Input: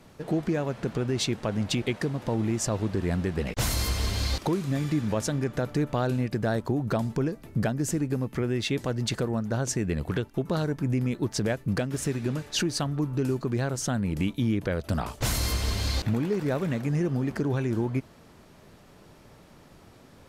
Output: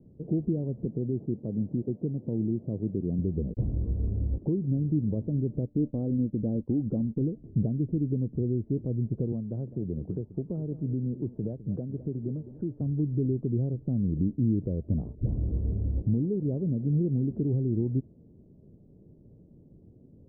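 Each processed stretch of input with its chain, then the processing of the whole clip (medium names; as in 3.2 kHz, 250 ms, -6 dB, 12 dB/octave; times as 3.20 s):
0.85–3.19 s: median filter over 25 samples + high-pass 130 Hz
5.66–7.21 s: expander -32 dBFS + comb 3.8 ms, depth 41%
9.32–12.81 s: tilt shelf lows -6 dB, about 680 Hz + delay 206 ms -15 dB + three bands compressed up and down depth 40%
15.15–15.73 s: phase dispersion highs, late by 93 ms, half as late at 800 Hz + three bands compressed up and down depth 40%
whole clip: inverse Chebyshev low-pass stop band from 2.7 kHz, stop band 80 dB; peaking EQ 130 Hz +6.5 dB 2.9 oct; trim -5 dB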